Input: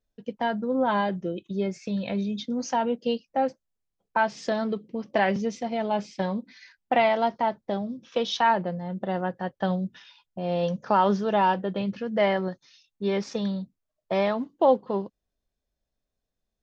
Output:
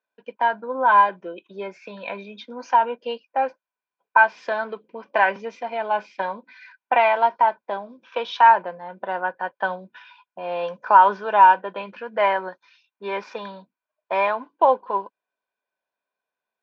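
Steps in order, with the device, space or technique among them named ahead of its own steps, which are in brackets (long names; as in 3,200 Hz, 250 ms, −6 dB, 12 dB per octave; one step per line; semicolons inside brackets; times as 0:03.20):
tin-can telephone (band-pass filter 530–2,800 Hz; hollow resonant body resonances 1,000/1,500/2,400 Hz, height 14 dB, ringing for 30 ms)
level +2.5 dB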